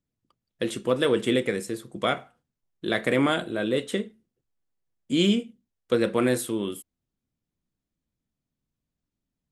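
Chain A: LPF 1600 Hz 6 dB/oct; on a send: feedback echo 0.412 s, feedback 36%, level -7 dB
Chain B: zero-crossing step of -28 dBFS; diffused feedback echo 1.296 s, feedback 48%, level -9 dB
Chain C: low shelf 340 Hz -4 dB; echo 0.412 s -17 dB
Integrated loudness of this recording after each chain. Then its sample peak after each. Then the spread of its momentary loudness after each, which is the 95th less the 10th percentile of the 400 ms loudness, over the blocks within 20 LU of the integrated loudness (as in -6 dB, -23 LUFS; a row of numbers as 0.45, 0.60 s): -27.0, -26.0, -27.5 LUFS; -10.5, -7.5, -9.5 dBFS; 17, 12, 17 LU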